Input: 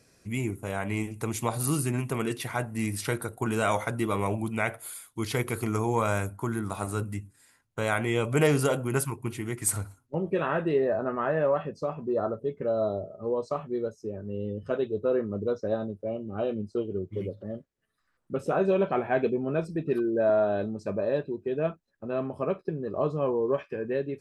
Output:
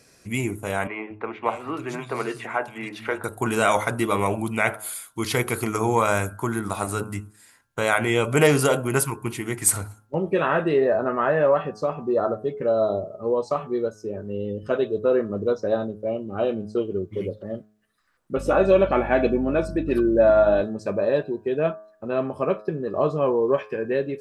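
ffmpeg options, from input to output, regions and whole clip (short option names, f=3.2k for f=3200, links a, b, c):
-filter_complex "[0:a]asettb=1/sr,asplit=3[a][b][c];[a]atrim=end=0.874[d];[b]atrim=start=0.87:end=3.24,asetpts=PTS-STARTPTS,afade=t=in:d=0.004:c=qsin,afade=t=out:st=2.366:d=0.004:c=qsin,acrossover=split=7100[e][f];[f]acompressor=threshold=-50dB:ratio=4:attack=1:release=60[g];[e][g]amix=inputs=2:normalize=0,bass=f=250:g=-13,treble=f=4k:g=-15,acrossover=split=180|2900[h][i][j];[h]adelay=230[k];[j]adelay=560[l];[k][i][l]amix=inputs=3:normalize=0,atrim=end_sample=104517[m];[c]atrim=start=3.236[n];[d][m]acrossfade=d=0.004:c1=hsin:c2=qsin[o];[o][n]acrossfade=d=0.004:c1=qsin:c2=hsin,asettb=1/sr,asplit=3[p][q][r];[p]atrim=end=18.374[s];[q]atrim=start=18.37:end=20.61,asetpts=PTS-STARTPTS,afade=t=in:d=0.004:c=qsin,afade=t=out:st=2.236:d=0.004:c=qsin,aecho=1:1:3.5:0.6,atrim=end_sample=98784,aeval=exprs='val(0)+0.0178*(sin(2*PI*50*n/s)+sin(2*PI*2*50*n/s)/2+sin(2*PI*3*50*n/s)/3+sin(2*PI*4*50*n/s)/4+sin(2*PI*5*50*n/s)/5)':c=same[t];[r]atrim=start=20.606[u];[s][t]acrossfade=d=0.004:c1=hsin:c2=qsin[v];[v][u]acrossfade=d=0.004:c1=qsin:c2=hsin,lowshelf=f=310:g=-5.5,bandreject=f=106.4:t=h:w=4,bandreject=f=212.8:t=h:w=4,bandreject=f=319.2:t=h:w=4,bandreject=f=425.6:t=h:w=4,bandreject=f=532:t=h:w=4,bandreject=f=638.4:t=h:w=4,bandreject=f=744.8:t=h:w=4,bandreject=f=851.2:t=h:w=4,bandreject=f=957.6:t=h:w=4,bandreject=f=1.064k:t=h:w=4,bandreject=f=1.1704k:t=h:w=4,bandreject=f=1.2768k:t=h:w=4,bandreject=f=1.3832k:t=h:w=4,bandreject=f=1.4896k:t=h:w=4,bandreject=f=1.596k:t=h:w=4,bandreject=f=1.7024k:t=h:w=4,volume=7.5dB"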